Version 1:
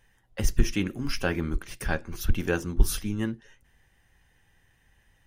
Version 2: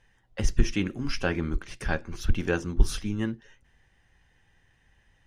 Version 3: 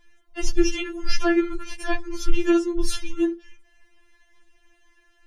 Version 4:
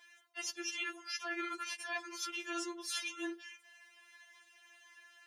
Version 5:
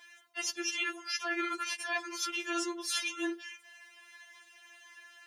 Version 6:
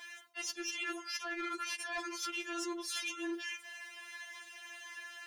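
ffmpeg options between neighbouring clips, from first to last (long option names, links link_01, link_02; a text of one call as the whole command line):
ffmpeg -i in.wav -af "lowpass=6800" out.wav
ffmpeg -i in.wav -af "afftfilt=real='re*4*eq(mod(b,16),0)':imag='im*4*eq(mod(b,16),0)':win_size=2048:overlap=0.75,volume=7.5dB" out.wav
ffmpeg -i in.wav -af "highpass=950,areverse,acompressor=threshold=-41dB:ratio=16,areverse,volume=4.5dB" out.wav
ffmpeg -i in.wav -af "equalizer=frequency=230:width=5.5:gain=9,volume=5.5dB" out.wav
ffmpeg -i in.wav -af "areverse,acompressor=threshold=-42dB:ratio=6,areverse,asoftclip=type=tanh:threshold=-37dB,volume=6.5dB" out.wav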